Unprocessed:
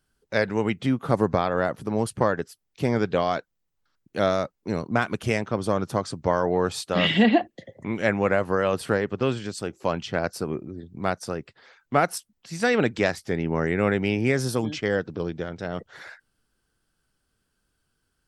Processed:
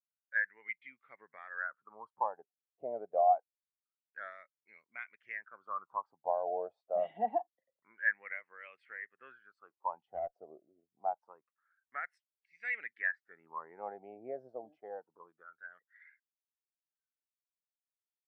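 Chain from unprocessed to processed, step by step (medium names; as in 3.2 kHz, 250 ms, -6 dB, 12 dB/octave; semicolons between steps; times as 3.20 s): wah-wah 0.26 Hz 650–2200 Hz, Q 6.4; 10.07–10.47 s: valve stage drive 28 dB, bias 0.25; spectral contrast expander 1.5:1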